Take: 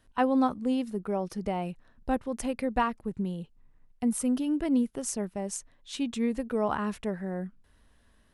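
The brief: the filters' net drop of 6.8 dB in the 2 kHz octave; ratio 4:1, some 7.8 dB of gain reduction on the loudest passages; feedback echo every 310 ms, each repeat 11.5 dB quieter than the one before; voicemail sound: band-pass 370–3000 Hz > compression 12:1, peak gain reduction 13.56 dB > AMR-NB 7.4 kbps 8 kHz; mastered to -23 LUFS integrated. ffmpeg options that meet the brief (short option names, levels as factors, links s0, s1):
-af "equalizer=f=2000:t=o:g=-8.5,acompressor=threshold=0.0282:ratio=4,highpass=370,lowpass=3000,aecho=1:1:310|620|930:0.266|0.0718|0.0194,acompressor=threshold=0.00794:ratio=12,volume=20" -ar 8000 -c:a libopencore_amrnb -b:a 7400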